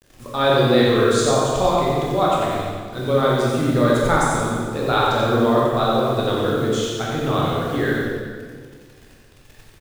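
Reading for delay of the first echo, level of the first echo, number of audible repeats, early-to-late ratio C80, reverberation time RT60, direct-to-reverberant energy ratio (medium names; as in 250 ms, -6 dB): 92 ms, -4.0 dB, 1, -1.0 dB, 1.7 s, -6.0 dB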